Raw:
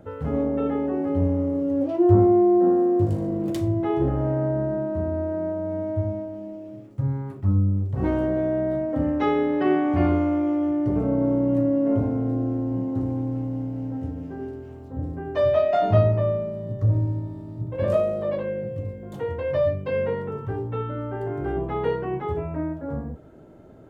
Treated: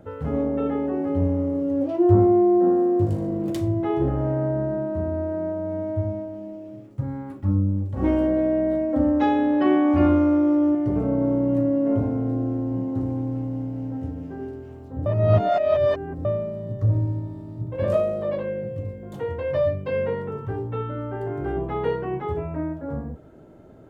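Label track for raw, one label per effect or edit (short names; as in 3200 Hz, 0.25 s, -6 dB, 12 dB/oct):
7.020000	10.750000	comb 3.6 ms
15.060000	16.250000	reverse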